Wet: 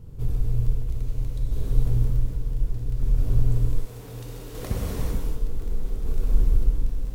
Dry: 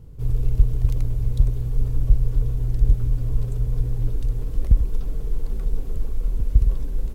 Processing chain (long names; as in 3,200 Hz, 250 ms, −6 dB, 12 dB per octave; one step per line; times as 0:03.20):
0:03.41–0:05.00: high-pass filter 700 Hz 6 dB per octave
automatic gain control gain up to 9 dB
brickwall limiter −10.5 dBFS, peak gain reduction 9 dB
downward compressor, threshold −19 dBFS, peak gain reduction 6.5 dB
square-wave tremolo 0.66 Hz, depth 60%, duty 25%
surface crackle 10 per second −35 dBFS
reverb whose tail is shaped and stops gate 480 ms flat, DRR −4.5 dB